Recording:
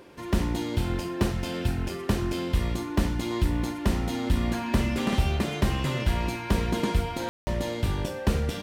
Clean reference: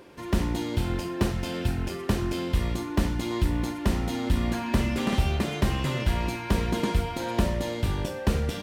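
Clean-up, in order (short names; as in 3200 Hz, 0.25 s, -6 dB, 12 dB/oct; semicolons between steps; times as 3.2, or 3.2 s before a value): room tone fill 7.29–7.47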